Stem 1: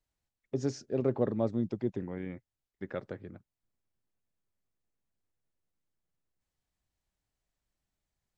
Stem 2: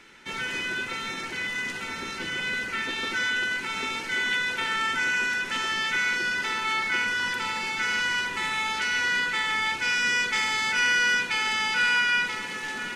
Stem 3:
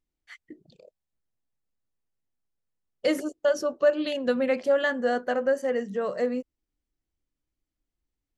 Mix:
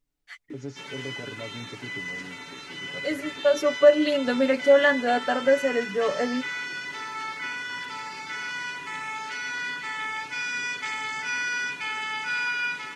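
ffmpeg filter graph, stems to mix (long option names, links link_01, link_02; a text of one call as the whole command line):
ffmpeg -i stem1.wav -i stem2.wav -i stem3.wav -filter_complex "[0:a]alimiter=limit=-22dB:level=0:latency=1,volume=-7dB,asplit=2[link_01][link_02];[1:a]highpass=100,acrossover=split=7900[link_03][link_04];[link_04]acompressor=threshold=-57dB:ratio=4:attack=1:release=60[link_05];[link_03][link_05]amix=inputs=2:normalize=0,adelay=500,volume=-7.5dB[link_06];[2:a]volume=1.5dB[link_07];[link_02]apad=whole_len=369138[link_08];[link_07][link_08]sidechaincompress=threshold=-48dB:ratio=8:attack=36:release=951[link_09];[link_01][link_06][link_09]amix=inputs=3:normalize=0,aecho=1:1:7:0.75" out.wav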